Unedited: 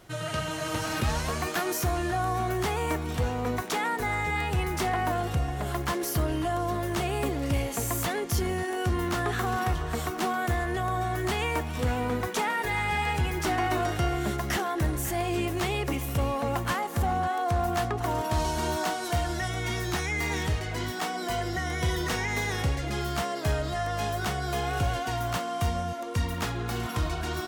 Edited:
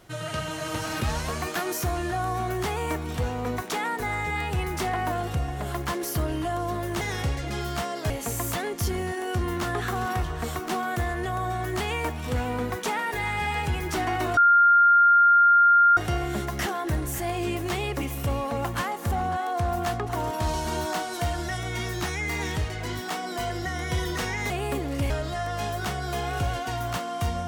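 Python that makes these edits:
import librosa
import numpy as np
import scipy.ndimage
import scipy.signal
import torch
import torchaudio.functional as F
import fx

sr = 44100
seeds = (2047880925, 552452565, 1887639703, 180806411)

y = fx.edit(x, sr, fx.swap(start_s=7.01, length_s=0.6, other_s=22.41, other_length_s=1.09),
    fx.insert_tone(at_s=13.88, length_s=1.6, hz=1400.0, db=-13.5), tone=tone)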